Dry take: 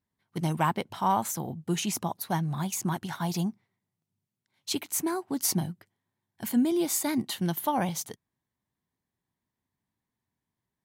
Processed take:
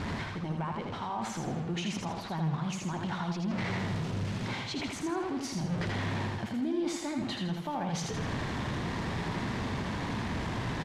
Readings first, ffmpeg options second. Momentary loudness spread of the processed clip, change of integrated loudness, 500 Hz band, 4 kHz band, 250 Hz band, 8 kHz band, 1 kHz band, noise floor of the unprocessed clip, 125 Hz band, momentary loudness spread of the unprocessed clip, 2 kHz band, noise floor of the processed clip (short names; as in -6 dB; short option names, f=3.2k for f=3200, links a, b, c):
3 LU, -4.5 dB, -2.0 dB, -1.0 dB, -2.0 dB, -11.0 dB, -4.5 dB, under -85 dBFS, +1.0 dB, 8 LU, +3.5 dB, -39 dBFS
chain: -af "aeval=exprs='val(0)+0.5*0.0224*sgn(val(0))':c=same,lowpass=5.3k,aemphasis=mode=reproduction:type=50kf,areverse,acompressor=threshold=-38dB:ratio=4,areverse,alimiter=level_in=10.5dB:limit=-24dB:level=0:latency=1:release=66,volume=-10.5dB,aecho=1:1:81|162|243|324|405:0.631|0.271|0.117|0.0502|0.0216,volume=6.5dB"